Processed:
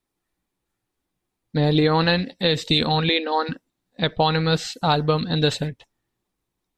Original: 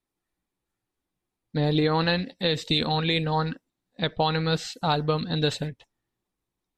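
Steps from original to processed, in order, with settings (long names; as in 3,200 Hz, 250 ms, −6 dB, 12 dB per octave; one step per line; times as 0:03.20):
0:03.09–0:03.49: linear-phase brick-wall band-pass 230–6,300 Hz
level +4.5 dB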